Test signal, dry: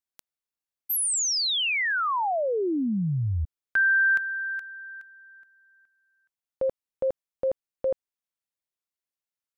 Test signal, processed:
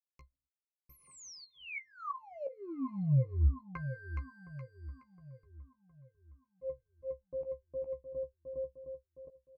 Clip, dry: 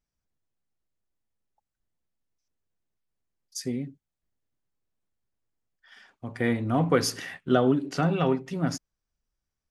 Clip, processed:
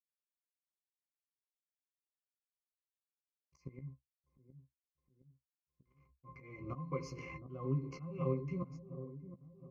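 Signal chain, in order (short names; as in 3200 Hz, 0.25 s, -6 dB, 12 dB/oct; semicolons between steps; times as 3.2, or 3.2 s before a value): backlash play -45 dBFS; ripple EQ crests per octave 0.77, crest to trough 18 dB; short-mantissa float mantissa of 6-bit; compressor 2.5:1, threshold -30 dBFS; dynamic EQ 250 Hz, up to -4 dB, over -40 dBFS, Q 0.84; octave resonator C, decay 0.11 s; on a send: dark delay 0.714 s, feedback 47%, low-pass 640 Hz, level -12 dB; on the sum: auto swell 0.33 s; doubler 15 ms -8 dB; gain +7.5 dB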